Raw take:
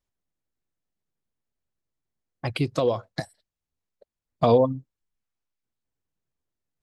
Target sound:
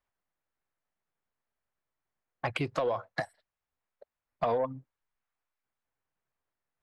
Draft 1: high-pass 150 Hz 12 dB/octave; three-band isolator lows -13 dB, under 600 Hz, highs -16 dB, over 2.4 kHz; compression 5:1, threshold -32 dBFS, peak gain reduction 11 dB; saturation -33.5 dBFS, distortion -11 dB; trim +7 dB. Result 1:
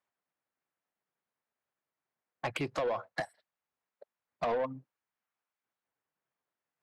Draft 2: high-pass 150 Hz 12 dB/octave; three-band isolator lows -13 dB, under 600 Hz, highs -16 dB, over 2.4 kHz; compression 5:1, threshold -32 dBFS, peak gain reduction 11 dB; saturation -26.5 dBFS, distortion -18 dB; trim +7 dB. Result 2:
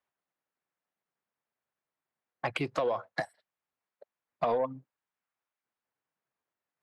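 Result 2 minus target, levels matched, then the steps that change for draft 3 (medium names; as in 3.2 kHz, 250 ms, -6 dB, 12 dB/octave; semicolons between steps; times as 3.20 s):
125 Hz band -3.5 dB
remove: high-pass 150 Hz 12 dB/octave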